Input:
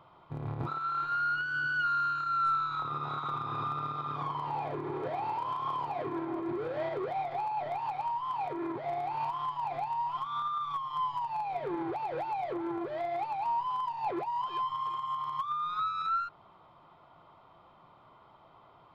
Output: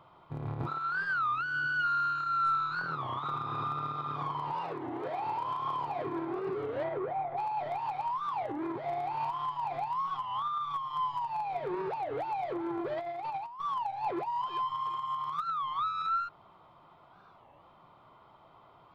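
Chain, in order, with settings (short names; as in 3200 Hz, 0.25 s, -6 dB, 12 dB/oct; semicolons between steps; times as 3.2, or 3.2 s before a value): 4.52–5.26 low shelf 160 Hz -11.5 dB; 6.83–7.36 LPF 2500 Hz -> 1400 Hz 12 dB/oct; 12.79–13.61 negative-ratio compressor -36 dBFS, ratio -0.5; record warp 33 1/3 rpm, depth 250 cents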